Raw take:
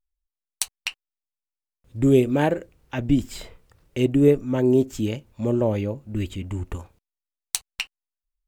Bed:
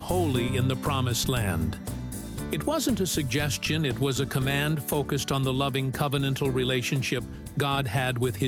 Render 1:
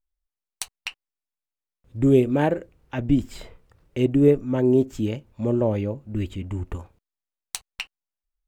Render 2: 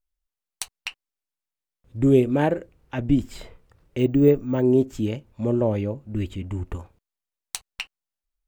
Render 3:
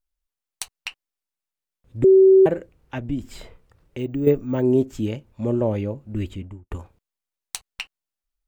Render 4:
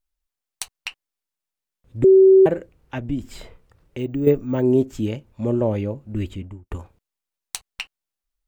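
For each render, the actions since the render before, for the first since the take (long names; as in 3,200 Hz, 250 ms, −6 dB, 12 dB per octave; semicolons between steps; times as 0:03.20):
high-shelf EQ 3,100 Hz −7.5 dB
0:03.99–0:04.62: bad sample-rate conversion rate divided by 2×, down filtered, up hold
0:02.04–0:02.46: beep over 382 Hz −8.5 dBFS; 0:02.98–0:04.27: downward compressor 1.5 to 1, threshold −34 dBFS; 0:06.29–0:06.71: fade out and dull
level +1 dB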